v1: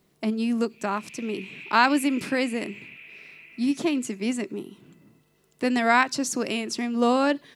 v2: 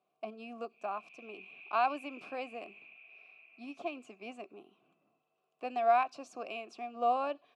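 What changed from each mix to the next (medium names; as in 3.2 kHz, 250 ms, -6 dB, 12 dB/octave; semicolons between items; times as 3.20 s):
master: add vowel filter a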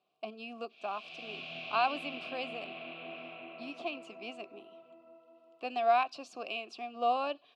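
background: remove band-pass filter 2.5 kHz, Q 10; master: add high-order bell 3.7 kHz +8.5 dB 1.1 oct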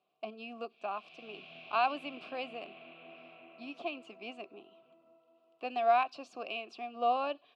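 background -7.5 dB; master: add tone controls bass -1 dB, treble -7 dB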